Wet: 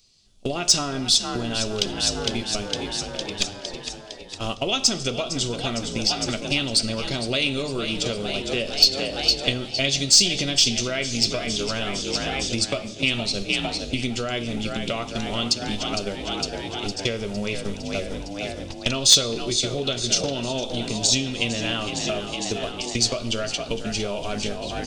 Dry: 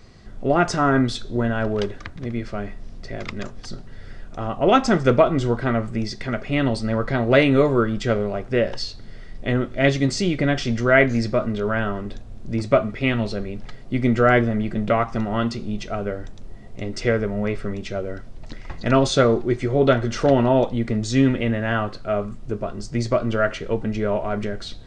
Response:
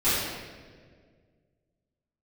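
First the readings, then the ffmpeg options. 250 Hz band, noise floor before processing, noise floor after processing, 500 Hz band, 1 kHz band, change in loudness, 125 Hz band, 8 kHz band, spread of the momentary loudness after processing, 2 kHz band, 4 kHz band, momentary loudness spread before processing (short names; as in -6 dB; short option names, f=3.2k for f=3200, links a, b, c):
-7.0 dB, -39 dBFS, -37 dBFS, -8.0 dB, -7.5 dB, -1.5 dB, -7.5 dB, +15.5 dB, 10 LU, -3.5 dB, +13.0 dB, 15 LU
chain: -filter_complex "[0:a]agate=range=-28dB:threshold=-25dB:ratio=16:detection=peak,equalizer=f=2k:t=o:w=0.27:g=-9,asplit=8[a][b][c][d][e][f][g][h];[b]adelay=458,afreqshift=44,volume=-12dB[i];[c]adelay=916,afreqshift=88,volume=-16.3dB[j];[d]adelay=1374,afreqshift=132,volume=-20.6dB[k];[e]adelay=1832,afreqshift=176,volume=-24.9dB[l];[f]adelay=2290,afreqshift=220,volume=-29.2dB[m];[g]adelay=2748,afreqshift=264,volume=-33.5dB[n];[h]adelay=3206,afreqshift=308,volume=-37.8dB[o];[a][i][j][k][l][m][n][o]amix=inputs=8:normalize=0,acompressor=threshold=-30dB:ratio=16,aexciter=amount=12.6:drive=3.3:freq=2.4k,asplit=2[p][q];[1:a]atrim=start_sample=2205[r];[q][r]afir=irnorm=-1:irlink=0,volume=-30dB[s];[p][s]amix=inputs=2:normalize=0,acontrast=62,volume=-1dB"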